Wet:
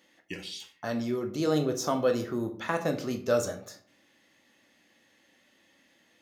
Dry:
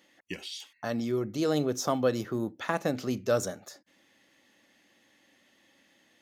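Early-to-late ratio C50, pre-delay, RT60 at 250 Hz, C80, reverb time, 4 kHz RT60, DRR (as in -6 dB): 11.5 dB, 10 ms, 0.60 s, 16.0 dB, 0.50 s, 0.30 s, 4.5 dB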